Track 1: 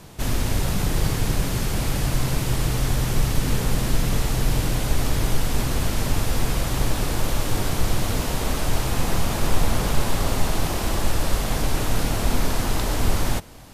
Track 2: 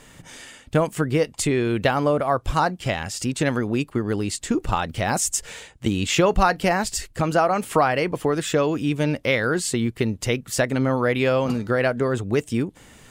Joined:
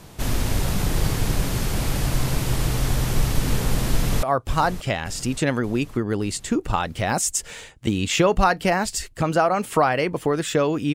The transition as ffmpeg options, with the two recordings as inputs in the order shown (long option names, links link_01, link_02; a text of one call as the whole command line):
ffmpeg -i cue0.wav -i cue1.wav -filter_complex "[0:a]apad=whole_dur=10.94,atrim=end=10.94,atrim=end=4.232[link_01];[1:a]atrim=start=2.218:end=8.93[link_02];[link_01][link_02]acrossfade=duration=0.004:curve1=hsin:curve2=hsin,asplit=2[link_03][link_04];[link_04]afade=type=in:start_time=3.89:duration=0.01,afade=type=out:start_time=4.23:duration=0.01,aecho=0:1:580|1160|1740|2320|2900|3480|4060:0.237137|0.142282|0.0853695|0.0512217|0.030733|0.0184398|0.0110639[link_05];[link_03][link_05]amix=inputs=2:normalize=0" out.wav